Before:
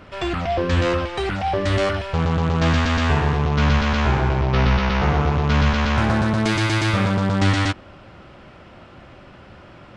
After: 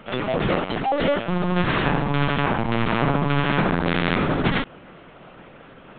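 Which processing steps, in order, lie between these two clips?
time stretch by overlap-add 0.6×, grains 20 ms
linear-prediction vocoder at 8 kHz pitch kept
low shelf with overshoot 120 Hz −9 dB, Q 1.5
level +1.5 dB

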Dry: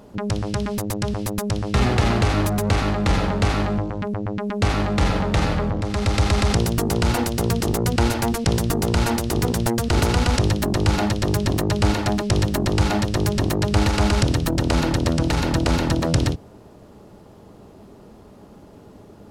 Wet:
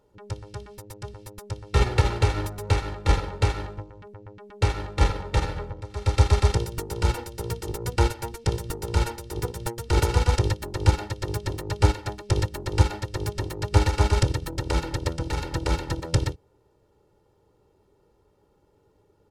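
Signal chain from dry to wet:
comb filter 2.2 ms, depth 69%
expander for the loud parts 2.5 to 1, over −24 dBFS

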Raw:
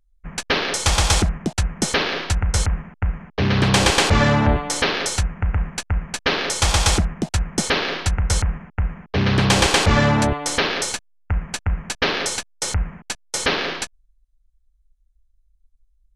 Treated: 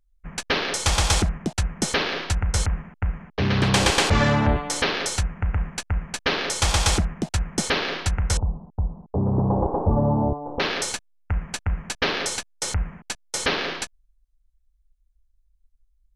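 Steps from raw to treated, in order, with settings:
0:08.37–0:10.60: Butterworth low-pass 970 Hz 48 dB per octave
level −3 dB

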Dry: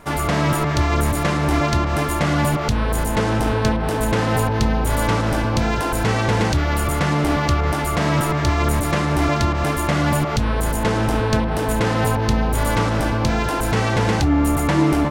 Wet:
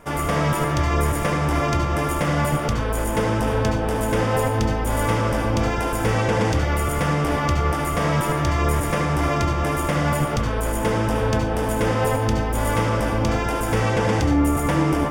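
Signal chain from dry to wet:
parametric band 500 Hz +6 dB 0.29 octaves
notch filter 4,100 Hz, Q 5.5
on a send: convolution reverb RT60 0.45 s, pre-delay 64 ms, DRR 4 dB
on the sum: level −3.5 dB

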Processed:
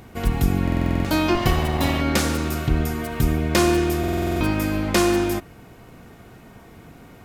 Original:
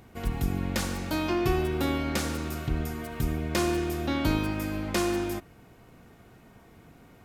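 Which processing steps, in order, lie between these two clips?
0:01.35–0:02.01: lower of the sound and its delayed copy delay 1 ms
buffer that repeats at 0:00.63/0:03.99, samples 2,048, times 8
level +8.5 dB

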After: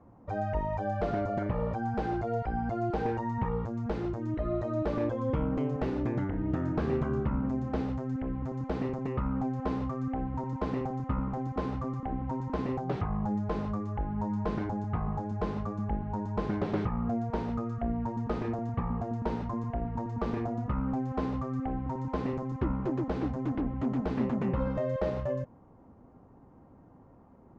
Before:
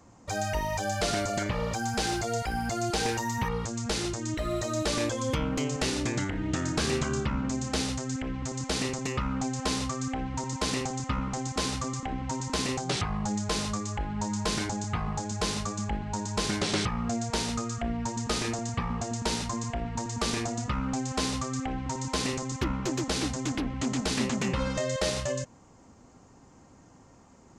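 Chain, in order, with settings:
low-pass filter 1,000 Hz 12 dB per octave

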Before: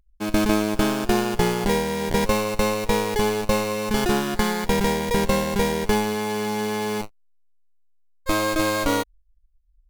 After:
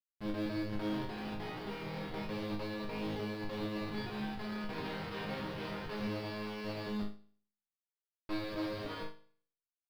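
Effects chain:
stylus tracing distortion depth 0.024 ms
high-pass filter 65 Hz 12 dB per octave
0:04.73–0:06.87: multiband delay without the direct sound highs, lows 100 ms, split 280 Hz
comparator with hysteresis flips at −27.5 dBFS
elliptic low-pass filter 4,800 Hz, stop band 50 dB
bit reduction 8 bits
resonators tuned to a chord G#2 major, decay 0.52 s
expander for the loud parts 1.5 to 1, over −51 dBFS
level +4.5 dB

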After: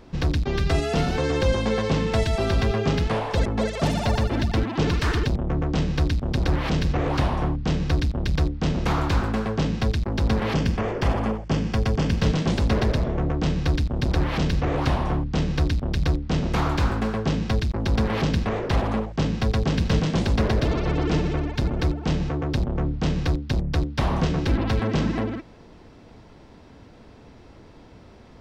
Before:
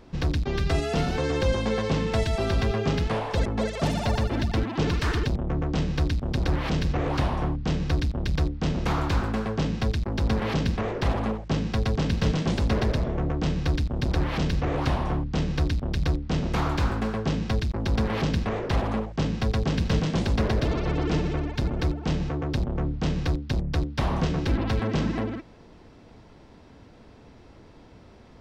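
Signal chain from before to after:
0:10.55–0:12.20: notch filter 3,900 Hz, Q 6.6
level +2.5 dB

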